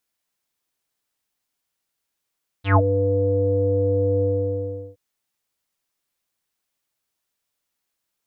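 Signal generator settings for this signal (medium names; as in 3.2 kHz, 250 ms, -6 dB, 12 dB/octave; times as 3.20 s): synth note square G2 24 dB/octave, low-pass 510 Hz, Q 8.4, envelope 3 oct, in 0.17 s, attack 120 ms, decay 0.06 s, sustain -10 dB, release 0.74 s, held 1.58 s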